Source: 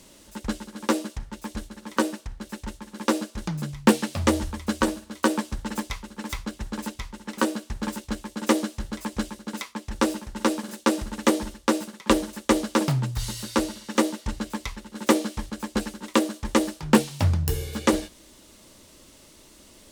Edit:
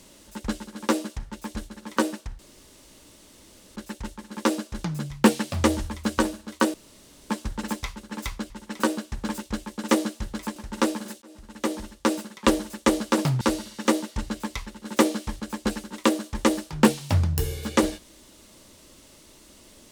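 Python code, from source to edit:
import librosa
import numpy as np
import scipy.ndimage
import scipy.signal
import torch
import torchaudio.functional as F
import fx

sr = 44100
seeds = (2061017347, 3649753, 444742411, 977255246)

y = fx.edit(x, sr, fx.insert_room_tone(at_s=2.39, length_s=1.37),
    fx.insert_room_tone(at_s=5.37, length_s=0.56),
    fx.cut(start_s=6.57, length_s=0.51),
    fx.cut(start_s=9.14, length_s=1.05),
    fx.fade_in_span(start_s=10.85, length_s=0.94),
    fx.cut(start_s=13.04, length_s=0.47), tone=tone)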